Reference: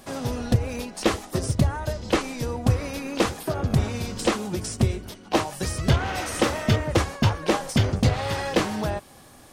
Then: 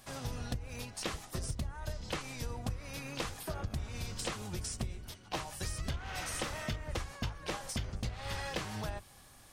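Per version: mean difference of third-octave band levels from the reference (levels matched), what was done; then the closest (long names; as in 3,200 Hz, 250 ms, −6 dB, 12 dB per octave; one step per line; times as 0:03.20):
5.0 dB: sub-octave generator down 1 octave, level −1 dB
parametric band 300 Hz −9.5 dB 2.8 octaves
downward compressor 12 to 1, threshold −27 dBFS, peak gain reduction 13.5 dB
level −6 dB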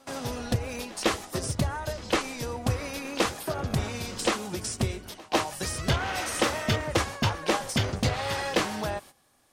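3.5 dB: noise gate −42 dBFS, range −14 dB
low-shelf EQ 500 Hz −7.5 dB
on a send: backwards echo 152 ms −22.5 dB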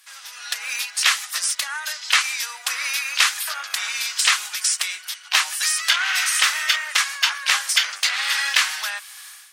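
18.5 dB: high-pass filter 1,500 Hz 24 dB per octave
automatic gain control gain up to 16 dB
MP3 160 kbit/s 44,100 Hz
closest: second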